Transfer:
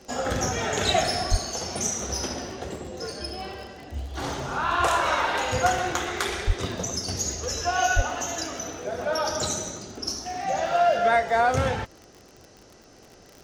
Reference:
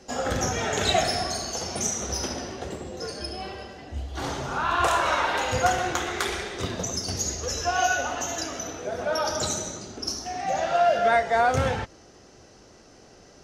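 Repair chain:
click removal
high-pass at the plosives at 0:01.30/0:06.46/0:07.95

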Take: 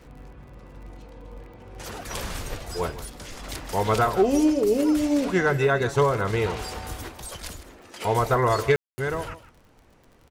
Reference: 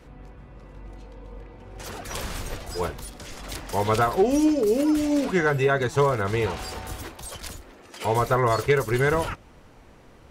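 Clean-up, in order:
click removal
ambience match 0:08.76–0:08.98
echo removal 156 ms −15 dB
level correction +6 dB, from 0:08.83

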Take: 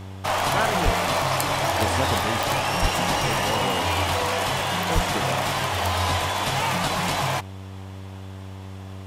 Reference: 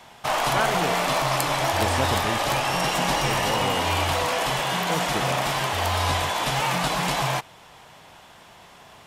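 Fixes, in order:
click removal
hum removal 95.7 Hz, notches 13
0:00.84–0:00.96: high-pass filter 140 Hz 24 dB per octave
0:02.81–0:02.93: high-pass filter 140 Hz 24 dB per octave
0:04.94–0:05.06: high-pass filter 140 Hz 24 dB per octave

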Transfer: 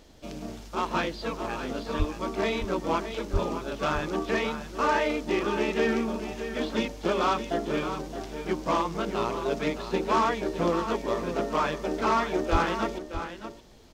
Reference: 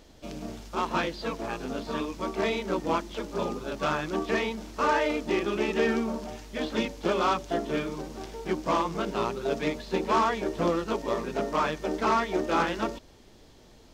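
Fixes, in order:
click removal
0:01.98–0:02.10: high-pass filter 140 Hz 24 dB per octave
0:03.32–0:03.44: high-pass filter 140 Hz 24 dB per octave
0:12.51–0:12.63: high-pass filter 140 Hz 24 dB per octave
echo removal 618 ms −10 dB

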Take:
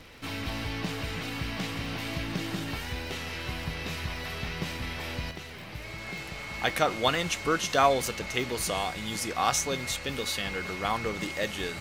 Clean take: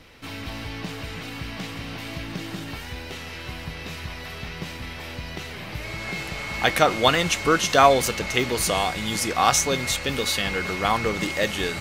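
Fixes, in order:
click removal
level correction +7 dB, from 0:05.31

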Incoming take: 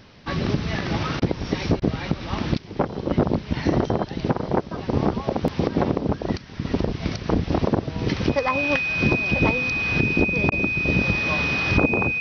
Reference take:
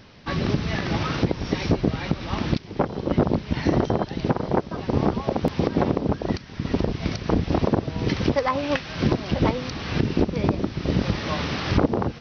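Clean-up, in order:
notch filter 2,500 Hz, Q 30
repair the gap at 0:01.20/0:01.80/0:10.50, 17 ms

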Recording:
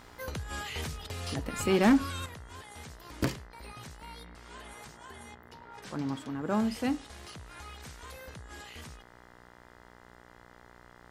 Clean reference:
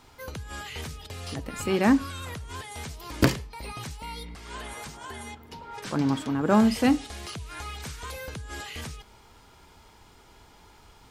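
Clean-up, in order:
clipped peaks rebuilt −17.5 dBFS
hum removal 60.3 Hz, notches 34
level 0 dB, from 0:02.26 +9 dB

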